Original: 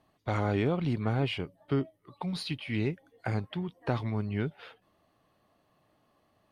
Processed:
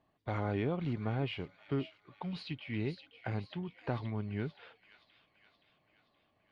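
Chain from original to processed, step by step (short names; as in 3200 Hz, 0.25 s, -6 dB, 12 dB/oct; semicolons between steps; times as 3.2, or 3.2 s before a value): LPF 3700 Hz 12 dB/oct; notch 1300 Hz, Q 24; thin delay 0.523 s, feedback 56%, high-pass 2700 Hz, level -7 dB; gain -5.5 dB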